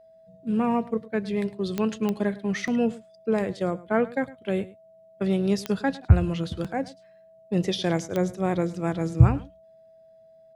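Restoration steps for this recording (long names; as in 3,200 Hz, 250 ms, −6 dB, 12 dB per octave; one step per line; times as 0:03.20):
click removal
notch filter 650 Hz, Q 30
echo removal 106 ms −19 dB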